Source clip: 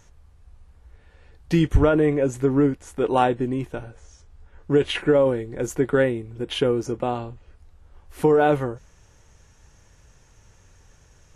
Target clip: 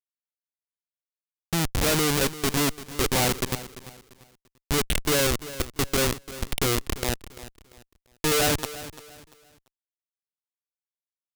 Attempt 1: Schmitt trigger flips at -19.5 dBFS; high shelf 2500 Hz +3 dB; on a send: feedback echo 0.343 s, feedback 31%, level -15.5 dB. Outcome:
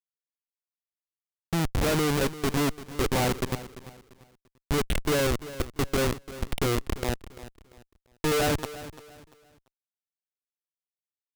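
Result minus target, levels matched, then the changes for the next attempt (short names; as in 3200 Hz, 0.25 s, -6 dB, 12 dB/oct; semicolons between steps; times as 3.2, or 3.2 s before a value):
4000 Hz band -3.0 dB
change: high shelf 2500 Hz +12 dB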